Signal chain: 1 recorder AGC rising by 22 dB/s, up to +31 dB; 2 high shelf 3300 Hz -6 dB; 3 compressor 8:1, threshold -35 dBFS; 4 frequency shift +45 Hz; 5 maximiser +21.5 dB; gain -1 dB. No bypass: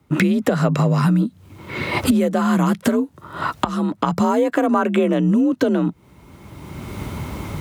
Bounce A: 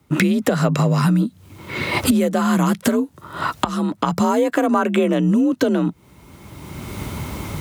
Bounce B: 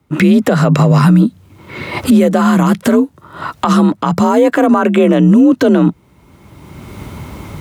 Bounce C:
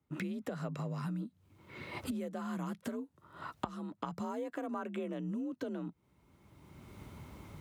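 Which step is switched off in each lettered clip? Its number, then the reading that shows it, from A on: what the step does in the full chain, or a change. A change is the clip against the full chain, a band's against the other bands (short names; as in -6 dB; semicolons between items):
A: 2, 8 kHz band +4.5 dB; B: 3, mean gain reduction 10.0 dB; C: 5, crest factor change +7.0 dB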